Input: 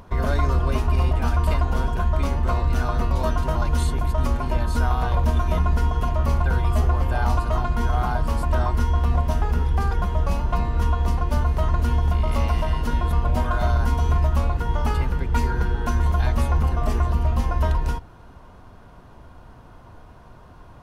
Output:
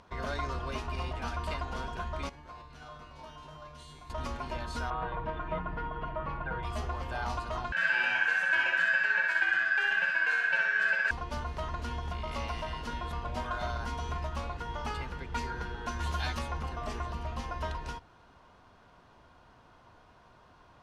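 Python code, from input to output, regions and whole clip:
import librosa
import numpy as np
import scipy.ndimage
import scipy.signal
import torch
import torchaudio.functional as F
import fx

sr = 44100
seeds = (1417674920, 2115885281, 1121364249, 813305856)

y = fx.chain(x, sr, fx.comb_fb(f0_hz=150.0, decay_s=0.87, harmonics='all', damping=0.0, mix_pct=90),
    fx.env_flatten(amount_pct=70), at=(2.29, 4.1))
y = fx.chain(y, sr, fx.bessel_lowpass(hz=1900.0, order=4),
    fx.comb(ms=6.3, depth=0.68), at=(4.9, 6.63))
y = fx.chain(y, sr, fx.ring_mod(carrier_hz=1600.0),
    fx.echo_feedback(ms=62, feedback_pct=58, wet_db=-4.0), at=(7.72, 11.11))
y = fx.chain(y, sr, fx.high_shelf(hz=2900.0, db=9.5),
    fx.doubler(ms=12.0, db=-4.0), at=(15.99, 16.39))
y = scipy.signal.sosfilt(scipy.signal.butter(2, 5100.0, 'lowpass', fs=sr, output='sos'), y)
y = fx.tilt_eq(y, sr, slope=2.5)
y = F.gain(torch.from_numpy(y), -8.0).numpy()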